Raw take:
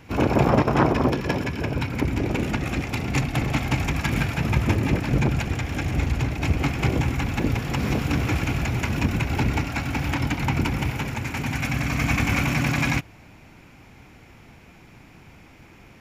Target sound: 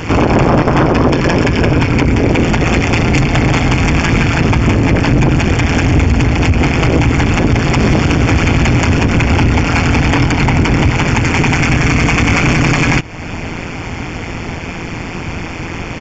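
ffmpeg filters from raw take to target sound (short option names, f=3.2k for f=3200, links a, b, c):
-af "acompressor=threshold=-38dB:ratio=2,aresample=16000,asoftclip=type=tanh:threshold=-28.5dB,aresample=44100,tremolo=f=170:d=0.824,asuperstop=centerf=3900:order=8:qfactor=7.6,alimiter=level_in=30.5dB:limit=-1dB:release=50:level=0:latency=1,volume=-1dB"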